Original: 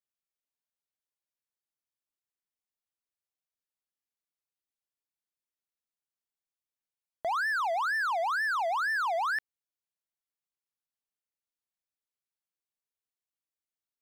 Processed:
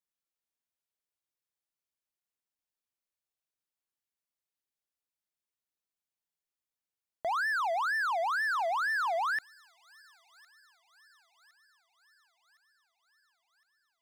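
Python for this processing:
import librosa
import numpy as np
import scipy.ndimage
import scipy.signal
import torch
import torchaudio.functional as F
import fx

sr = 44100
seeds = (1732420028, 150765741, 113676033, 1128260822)

y = fx.echo_wet_highpass(x, sr, ms=1061, feedback_pct=58, hz=3500.0, wet_db=-15.5)
y = F.gain(torch.from_numpy(y), -1.0).numpy()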